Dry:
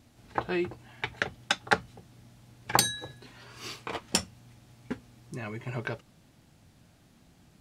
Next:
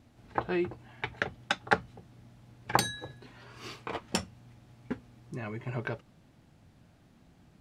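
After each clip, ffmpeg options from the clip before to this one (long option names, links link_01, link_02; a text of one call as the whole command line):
ffmpeg -i in.wav -af "highshelf=frequency=3600:gain=-10" out.wav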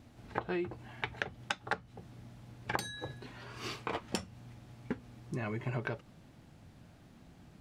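ffmpeg -i in.wav -af "acompressor=threshold=-35dB:ratio=6,volume=3dB" out.wav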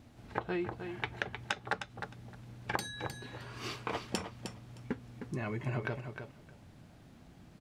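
ffmpeg -i in.wav -af "aecho=1:1:309|618|927:0.398|0.0637|0.0102" out.wav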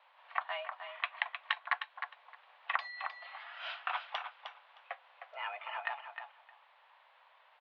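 ffmpeg -i in.wav -af "highpass=frequency=480:width_type=q:width=0.5412,highpass=frequency=480:width_type=q:width=1.307,lowpass=frequency=3300:width_type=q:width=0.5176,lowpass=frequency=3300:width_type=q:width=0.7071,lowpass=frequency=3300:width_type=q:width=1.932,afreqshift=280,volume=2dB" out.wav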